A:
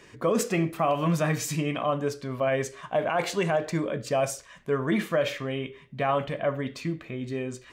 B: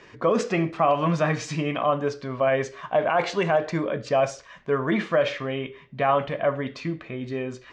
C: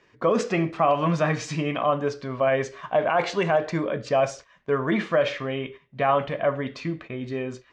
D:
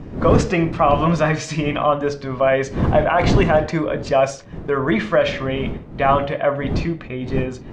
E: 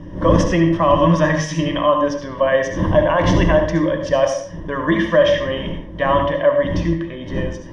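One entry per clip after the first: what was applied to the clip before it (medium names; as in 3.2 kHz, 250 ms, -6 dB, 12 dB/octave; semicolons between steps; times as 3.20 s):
low-pass 6 kHz 24 dB/octave; peaking EQ 980 Hz +5 dB 2.5 oct
gate -40 dBFS, range -11 dB
wind noise 240 Hz -30 dBFS; de-hum 70.57 Hz, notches 12; trim +5.5 dB
rippled EQ curve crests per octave 1.2, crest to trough 14 dB; reverberation RT60 0.50 s, pre-delay 63 ms, DRR 6 dB; trim -2.5 dB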